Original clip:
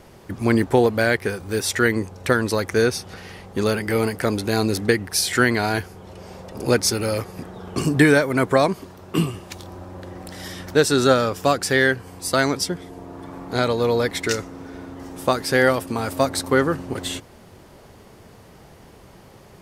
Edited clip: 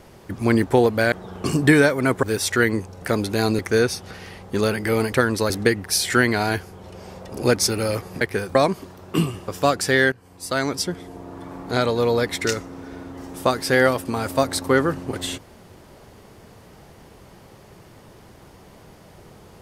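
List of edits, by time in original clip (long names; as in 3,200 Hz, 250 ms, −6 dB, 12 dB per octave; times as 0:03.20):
0:01.12–0:01.46: swap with 0:07.44–0:08.55
0:02.25–0:02.62: swap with 0:04.16–0:04.73
0:09.48–0:11.30: remove
0:11.94–0:12.75: fade in, from −16 dB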